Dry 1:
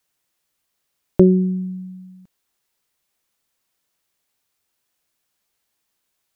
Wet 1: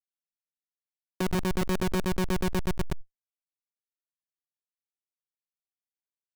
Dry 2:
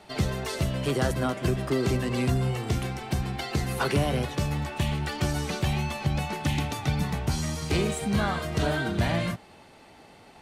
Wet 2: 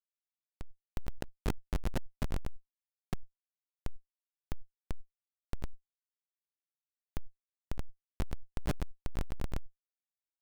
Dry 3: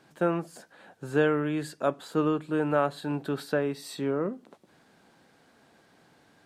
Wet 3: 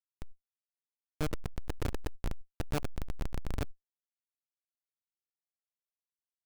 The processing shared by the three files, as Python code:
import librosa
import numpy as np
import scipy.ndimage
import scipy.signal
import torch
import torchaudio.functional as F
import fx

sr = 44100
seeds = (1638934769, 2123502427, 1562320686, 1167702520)

y = fx.peak_eq(x, sr, hz=5200.0, db=-13.5, octaves=0.29)
y = fx.filter_lfo_highpass(y, sr, shape='square', hz=7.9, low_hz=210.0, high_hz=3300.0, q=0.94)
y = fx.echo_swell(y, sr, ms=122, loudest=5, wet_db=-5)
y = fx.schmitt(y, sr, flips_db=-16.0)
y = fx.sustainer(y, sr, db_per_s=44.0)
y = y * librosa.db_to_amplitude(-2.0)